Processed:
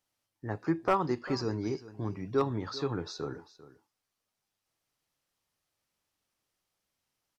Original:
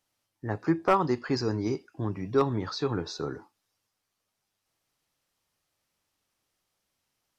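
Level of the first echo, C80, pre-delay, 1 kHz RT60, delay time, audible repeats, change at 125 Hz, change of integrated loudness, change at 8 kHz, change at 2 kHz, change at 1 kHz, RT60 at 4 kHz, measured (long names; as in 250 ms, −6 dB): −17.0 dB, no reverb audible, no reverb audible, no reverb audible, 396 ms, 1, −4.0 dB, −4.0 dB, can't be measured, −4.0 dB, −4.0 dB, no reverb audible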